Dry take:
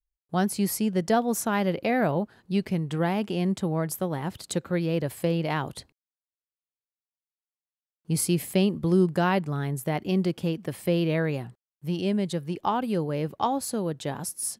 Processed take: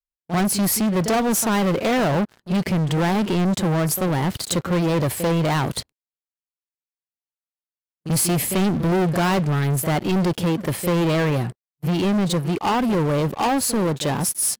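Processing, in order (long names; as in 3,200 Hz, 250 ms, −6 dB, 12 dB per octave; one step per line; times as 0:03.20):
echo ahead of the sound 40 ms −17 dB
leveller curve on the samples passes 5
level −4.5 dB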